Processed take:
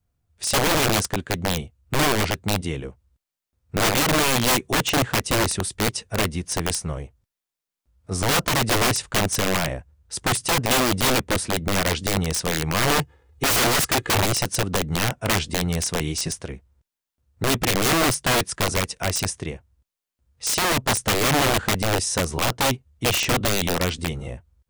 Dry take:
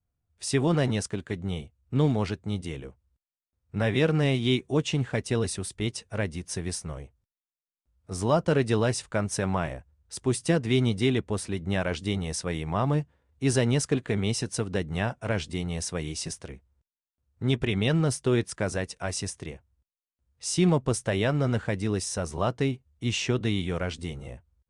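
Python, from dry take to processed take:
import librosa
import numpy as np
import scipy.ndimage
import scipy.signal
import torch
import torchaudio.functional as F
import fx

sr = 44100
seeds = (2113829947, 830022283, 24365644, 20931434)

y = fx.comb(x, sr, ms=2.4, depth=0.98, at=(12.98, 14.26))
y = (np.mod(10.0 ** (22.0 / 20.0) * y + 1.0, 2.0) - 1.0) / 10.0 ** (22.0 / 20.0)
y = F.gain(torch.from_numpy(y), 7.5).numpy()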